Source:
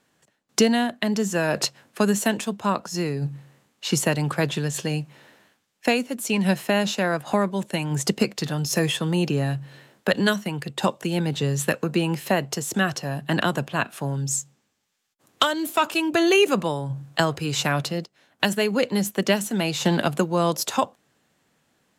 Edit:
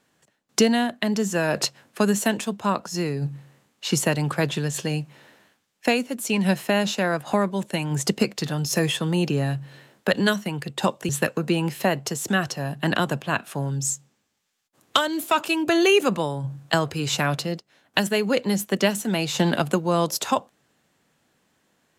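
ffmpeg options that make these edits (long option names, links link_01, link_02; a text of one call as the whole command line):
ffmpeg -i in.wav -filter_complex "[0:a]asplit=2[link_01][link_02];[link_01]atrim=end=11.092[link_03];[link_02]atrim=start=11.548[link_04];[link_03][link_04]acrossfade=duration=0.004:curve1=hsin:curve2=hsin" out.wav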